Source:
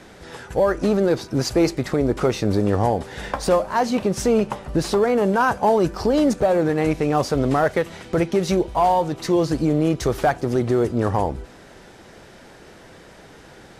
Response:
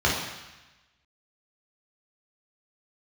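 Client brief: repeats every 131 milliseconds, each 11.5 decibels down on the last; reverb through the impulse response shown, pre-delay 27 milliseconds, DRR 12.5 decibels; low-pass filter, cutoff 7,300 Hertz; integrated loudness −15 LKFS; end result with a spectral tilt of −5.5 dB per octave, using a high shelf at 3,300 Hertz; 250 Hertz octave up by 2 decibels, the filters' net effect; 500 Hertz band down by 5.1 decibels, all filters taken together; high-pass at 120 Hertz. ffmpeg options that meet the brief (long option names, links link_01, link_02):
-filter_complex "[0:a]highpass=120,lowpass=7300,equalizer=frequency=250:width_type=o:gain=6,equalizer=frequency=500:width_type=o:gain=-9,highshelf=frequency=3300:gain=7,aecho=1:1:131|262|393:0.266|0.0718|0.0194,asplit=2[link_01][link_02];[1:a]atrim=start_sample=2205,adelay=27[link_03];[link_02][link_03]afir=irnorm=-1:irlink=0,volume=-29dB[link_04];[link_01][link_04]amix=inputs=2:normalize=0,volume=6dB"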